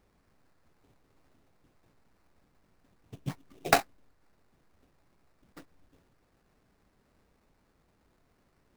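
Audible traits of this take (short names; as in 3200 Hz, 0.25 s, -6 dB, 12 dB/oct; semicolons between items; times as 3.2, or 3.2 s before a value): aliases and images of a low sample rate 3200 Hz, jitter 20%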